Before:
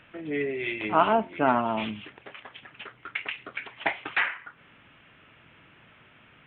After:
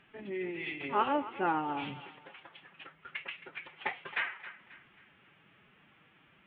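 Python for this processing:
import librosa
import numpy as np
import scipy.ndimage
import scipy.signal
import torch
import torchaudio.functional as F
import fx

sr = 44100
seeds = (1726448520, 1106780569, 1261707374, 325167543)

y = fx.pitch_keep_formants(x, sr, semitones=4.5)
y = fx.echo_thinned(y, sr, ms=269, feedback_pct=43, hz=560.0, wet_db=-14.5)
y = y * librosa.db_to_amplitude(-7.5)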